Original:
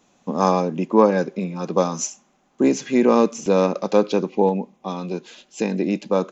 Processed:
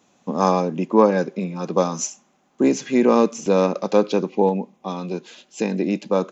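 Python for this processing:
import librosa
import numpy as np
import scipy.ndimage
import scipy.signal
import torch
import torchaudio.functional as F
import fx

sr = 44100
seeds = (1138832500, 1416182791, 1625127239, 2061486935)

y = scipy.signal.sosfilt(scipy.signal.butter(2, 66.0, 'highpass', fs=sr, output='sos'), x)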